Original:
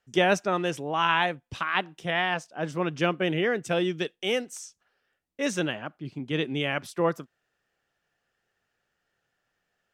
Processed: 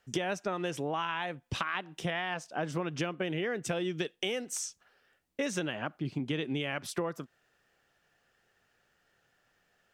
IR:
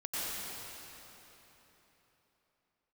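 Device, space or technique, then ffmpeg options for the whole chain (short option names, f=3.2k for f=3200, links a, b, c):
serial compression, peaks first: -af "acompressor=threshold=-31dB:ratio=10,acompressor=threshold=-38dB:ratio=2,volume=6dB"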